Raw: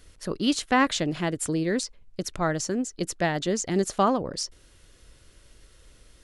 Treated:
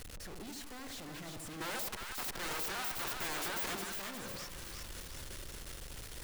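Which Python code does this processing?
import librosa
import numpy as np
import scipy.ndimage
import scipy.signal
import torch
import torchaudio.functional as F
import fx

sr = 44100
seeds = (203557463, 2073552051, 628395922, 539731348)

p1 = np.sign(x) * np.sqrt(np.mean(np.square(x)))
p2 = fx.fixed_phaser(p1, sr, hz=1500.0, stages=8, at=(1.6, 3.74), fade=0.02)
p3 = 10.0 ** (-35.0 / 20.0) * (np.abs((p2 / 10.0 ** (-35.0 / 20.0) + 3.0) % 4.0 - 2.0) - 1.0)
p4 = p3 + fx.echo_split(p3, sr, split_hz=910.0, low_ms=81, high_ms=358, feedback_pct=52, wet_db=-4.0, dry=0)
y = p4 * librosa.db_to_amplitude(1.0)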